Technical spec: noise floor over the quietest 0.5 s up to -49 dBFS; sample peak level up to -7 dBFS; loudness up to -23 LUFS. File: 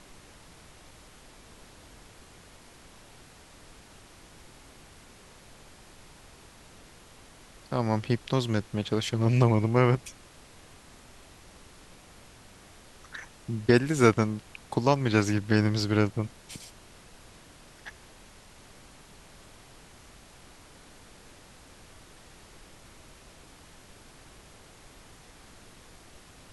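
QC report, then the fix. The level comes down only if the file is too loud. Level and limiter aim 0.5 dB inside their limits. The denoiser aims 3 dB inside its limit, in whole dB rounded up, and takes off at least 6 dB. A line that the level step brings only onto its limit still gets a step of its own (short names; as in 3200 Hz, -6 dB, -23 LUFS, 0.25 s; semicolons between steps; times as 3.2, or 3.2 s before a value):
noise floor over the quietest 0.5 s -52 dBFS: OK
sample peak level -6.5 dBFS: fail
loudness -26.0 LUFS: OK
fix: limiter -7.5 dBFS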